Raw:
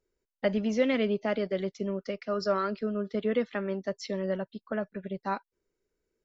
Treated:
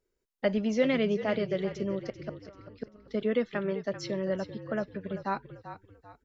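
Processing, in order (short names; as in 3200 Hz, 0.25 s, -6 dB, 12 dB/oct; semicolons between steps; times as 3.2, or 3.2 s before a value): 2.08–3.08 flipped gate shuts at -23 dBFS, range -28 dB; frequency-shifting echo 0.39 s, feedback 37%, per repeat -46 Hz, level -12 dB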